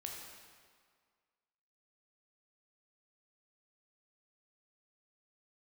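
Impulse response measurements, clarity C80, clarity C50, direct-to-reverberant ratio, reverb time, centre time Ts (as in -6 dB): 3.0 dB, 1.5 dB, -0.5 dB, 1.9 s, 79 ms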